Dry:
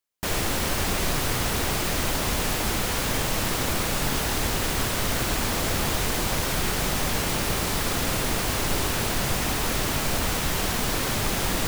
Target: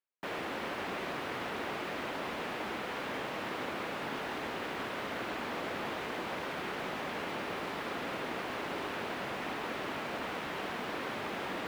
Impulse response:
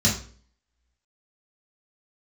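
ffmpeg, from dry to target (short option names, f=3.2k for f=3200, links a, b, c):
-filter_complex "[0:a]highpass=63,acrossover=split=210 3200:gain=0.112 1 0.0794[a][b][c];[a][b][c]amix=inputs=3:normalize=0,areverse,acompressor=mode=upward:threshold=-35dB:ratio=2.5,areverse,volume=-7.5dB"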